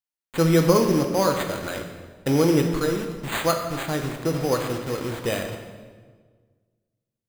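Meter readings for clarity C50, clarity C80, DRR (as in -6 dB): 6.5 dB, 8.0 dB, 3.5 dB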